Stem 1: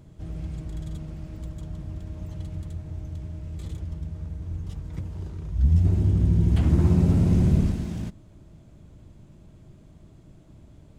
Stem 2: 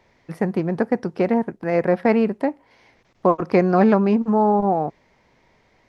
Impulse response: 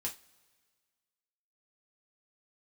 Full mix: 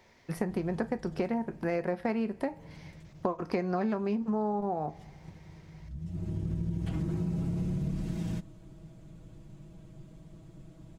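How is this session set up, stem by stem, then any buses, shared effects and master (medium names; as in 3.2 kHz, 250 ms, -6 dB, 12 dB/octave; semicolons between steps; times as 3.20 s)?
-3.0 dB, 0.30 s, send -20 dB, comb 6.2 ms, depth 78%; compression 3:1, threshold -25 dBFS, peak gain reduction 8.5 dB; auto duck -15 dB, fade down 1.90 s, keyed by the second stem
-5.5 dB, 0.00 s, send -6 dB, treble shelf 4.3 kHz +9 dB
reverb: on, pre-delay 3 ms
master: compression 6:1, threshold -28 dBFS, peak gain reduction 14 dB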